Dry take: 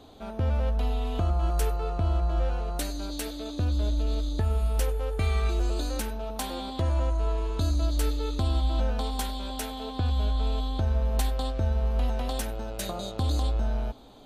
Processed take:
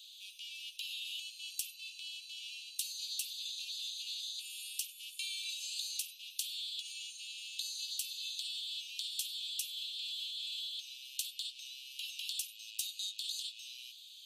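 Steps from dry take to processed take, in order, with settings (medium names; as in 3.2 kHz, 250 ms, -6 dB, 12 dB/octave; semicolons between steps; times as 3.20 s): steep high-pass 2.6 kHz 96 dB/octave; compression 3:1, threshold -46 dBFS, peak gain reduction 11 dB; trim +8 dB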